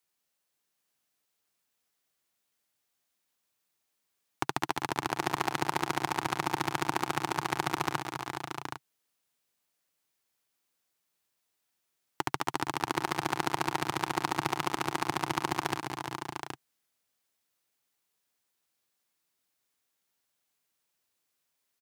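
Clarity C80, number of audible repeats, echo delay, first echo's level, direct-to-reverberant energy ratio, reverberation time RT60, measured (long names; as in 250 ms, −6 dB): no reverb audible, 5, 200 ms, −11.5 dB, no reverb audible, no reverb audible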